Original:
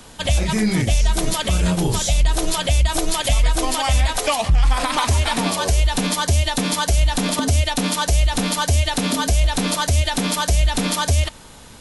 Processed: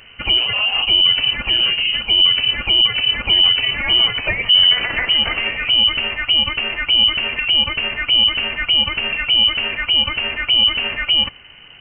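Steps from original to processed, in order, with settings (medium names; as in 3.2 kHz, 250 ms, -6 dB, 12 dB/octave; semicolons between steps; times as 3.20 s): frequency inversion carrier 3 kHz; bass shelf 180 Hz +5.5 dB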